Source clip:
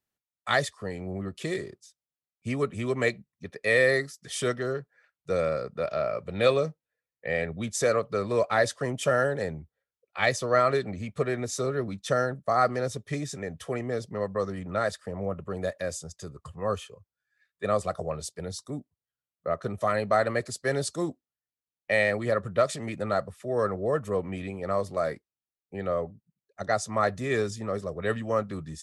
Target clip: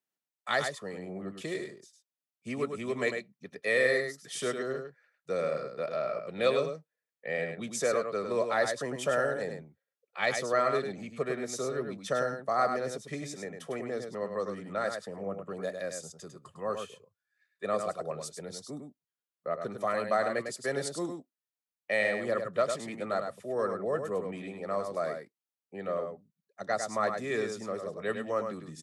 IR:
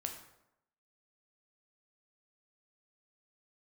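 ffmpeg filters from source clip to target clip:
-filter_complex "[0:a]acrossover=split=140[link_01][link_02];[link_01]acrusher=bits=3:mix=0:aa=0.5[link_03];[link_02]aecho=1:1:102:0.473[link_04];[link_03][link_04]amix=inputs=2:normalize=0,volume=-4.5dB"

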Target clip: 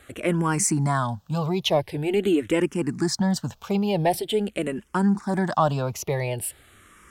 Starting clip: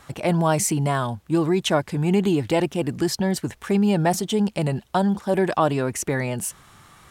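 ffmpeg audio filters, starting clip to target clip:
ffmpeg -i in.wav -filter_complex "[0:a]apsyclip=10.5dB,aeval=exprs='1.06*(cos(1*acos(clip(val(0)/1.06,-1,1)))-cos(1*PI/2))+0.0106*(cos(7*acos(clip(val(0)/1.06,-1,1)))-cos(7*PI/2))':channel_layout=same,asplit=2[link_01][link_02];[link_02]afreqshift=-0.45[link_03];[link_01][link_03]amix=inputs=2:normalize=1,volume=-9dB" out.wav

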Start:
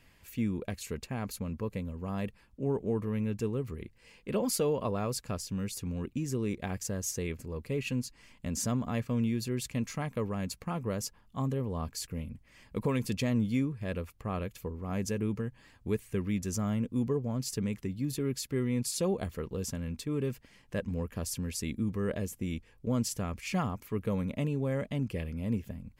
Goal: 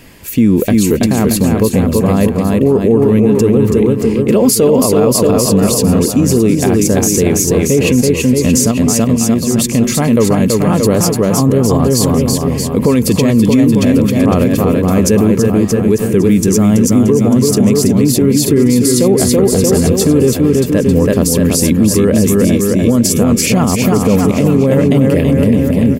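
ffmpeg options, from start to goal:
ffmpeg -i in.wav -filter_complex "[0:a]equalizer=frequency=320:width=0.52:gain=10,asettb=1/sr,asplit=3[link_01][link_02][link_03];[link_01]atrim=end=8.714[link_04];[link_02]atrim=start=8.71:end=9.59,asetpts=PTS-STARTPTS,afade=type=in:duration=0.004:curve=qsin,afade=type=out:start_time=0.876:duration=0.004:curve=qsin,acompressor=threshold=-31dB:ratio=6[link_05];[link_03]atrim=start=9.586[link_06];[link_04][link_05]acrossfade=duration=0.004:curve1=hsin:curve2=qsin[link_07];[link_07][link_06]acrossfade=duration=0.004:curve1=qsin:curve2=hsin,highshelf=frequency=4800:gain=9.5,aecho=1:1:330|627|894.3|1135|1351:0.631|0.398|0.251|0.158|0.1,alimiter=level_in=18.5dB:limit=-1dB:release=50:level=0:latency=1,volume=-1dB" out.wav

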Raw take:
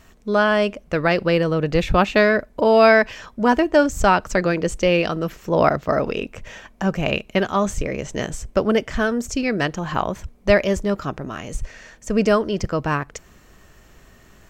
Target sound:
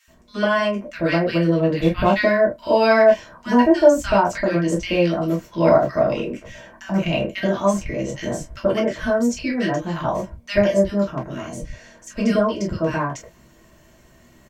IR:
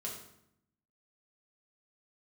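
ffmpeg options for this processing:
-filter_complex "[0:a]asettb=1/sr,asplit=3[link_01][link_02][link_03];[link_01]atrim=end=1.704[link_04];[link_02]atrim=start=1.7:end=2.13,asetpts=PTS-STARTPTS,afade=type=in:duration=0.004:curve=qsin,afade=type=out:start_time=0.426:duration=0.004:curve=qsin,equalizer=frequency=6400:width_type=o:width=0.88:gain=-9.5[link_05];[link_03]atrim=start=2.126[link_06];[link_04][link_05]acrossfade=duration=0.004:curve1=hsin:curve2=qsin[link_07];[link_07][link_06]acrossfade=duration=0.004:curve1=qsin:curve2=hsin,acrossover=split=1500[link_08][link_09];[link_08]adelay=80[link_10];[link_10][link_09]amix=inputs=2:normalize=0[link_11];[1:a]atrim=start_sample=2205,atrim=end_sample=3528,asetrate=66150,aresample=44100[link_12];[link_11][link_12]afir=irnorm=-1:irlink=0,volume=3.5dB"

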